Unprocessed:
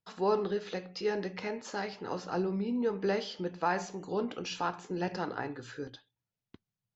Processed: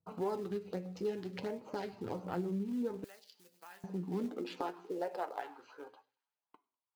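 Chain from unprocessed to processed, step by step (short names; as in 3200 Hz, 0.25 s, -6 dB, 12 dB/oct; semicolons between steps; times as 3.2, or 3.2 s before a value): Wiener smoothing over 25 samples; on a send at -15 dB: reverb RT60 0.50 s, pre-delay 3 ms; on the sum: LFO notch sine 1.4 Hz 510–6400 Hz; thin delay 99 ms, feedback 62%, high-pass 3200 Hz, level -20 dB; high-pass sweep 83 Hz -> 950 Hz, 3.22–5.67; in parallel at -5 dB: short-mantissa float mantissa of 2-bit; on the sum: flange 0.62 Hz, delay 5.9 ms, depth 5.5 ms, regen +51%; compressor 2.5:1, threshold -45 dBFS, peak gain reduction 14.5 dB; 3.04–3.84 differentiator; gain +5.5 dB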